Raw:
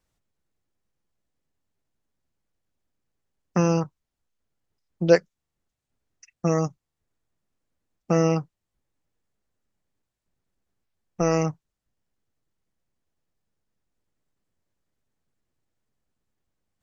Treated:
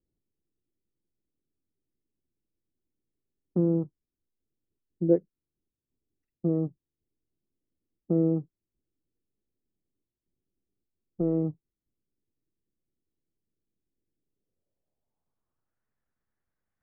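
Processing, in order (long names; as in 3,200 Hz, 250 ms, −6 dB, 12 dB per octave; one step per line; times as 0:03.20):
low-pass filter sweep 350 Hz → 1,700 Hz, 0:14.22–0:15.88
level −6.5 dB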